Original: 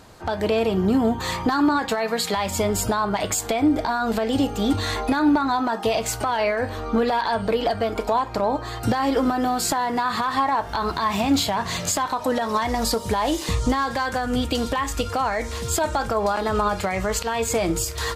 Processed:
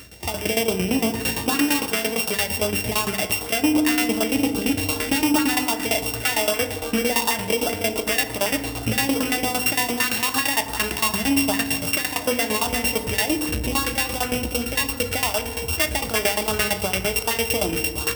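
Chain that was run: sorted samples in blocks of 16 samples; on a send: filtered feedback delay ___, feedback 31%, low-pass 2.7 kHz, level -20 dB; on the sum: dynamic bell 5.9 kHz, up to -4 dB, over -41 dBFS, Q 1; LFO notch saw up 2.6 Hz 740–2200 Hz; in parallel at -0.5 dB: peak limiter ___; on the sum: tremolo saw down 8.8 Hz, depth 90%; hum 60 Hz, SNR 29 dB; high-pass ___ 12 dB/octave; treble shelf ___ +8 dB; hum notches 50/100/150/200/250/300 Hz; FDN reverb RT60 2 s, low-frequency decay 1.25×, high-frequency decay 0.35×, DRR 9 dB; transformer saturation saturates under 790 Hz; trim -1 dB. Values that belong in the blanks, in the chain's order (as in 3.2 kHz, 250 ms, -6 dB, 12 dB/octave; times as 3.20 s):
1113 ms, -17.5 dBFS, 42 Hz, 2.4 kHz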